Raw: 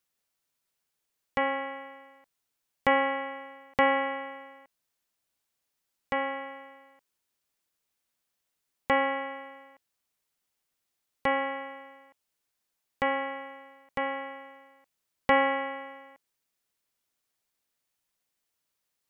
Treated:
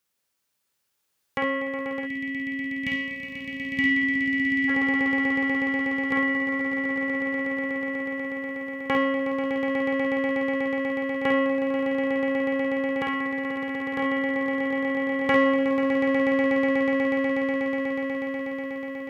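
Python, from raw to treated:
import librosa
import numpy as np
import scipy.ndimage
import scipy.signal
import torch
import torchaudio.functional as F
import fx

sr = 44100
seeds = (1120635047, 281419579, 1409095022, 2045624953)

p1 = fx.dynamic_eq(x, sr, hz=720.0, q=1.0, threshold_db=-40.0, ratio=4.0, max_db=-5)
p2 = 10.0 ** (-22.0 / 20.0) * np.tanh(p1 / 10.0 ** (-22.0 / 20.0))
p3 = p1 + F.gain(torch.from_numpy(p2), -9.0).numpy()
p4 = fx.notch(p3, sr, hz=700.0, q=12.0)
p5 = p4 + fx.echo_swell(p4, sr, ms=122, loudest=8, wet_db=-8.5, dry=0)
p6 = fx.spec_box(p5, sr, start_s=2.0, length_s=2.69, low_hz=340.0, high_hz=1700.0, gain_db=-24)
p7 = scipy.signal.sosfilt(scipy.signal.butter(2, 68.0, 'highpass', fs=sr, output='sos'), p6)
y = fx.echo_multitap(p7, sr, ms=(52, 67), db=(-4.5, -8.5))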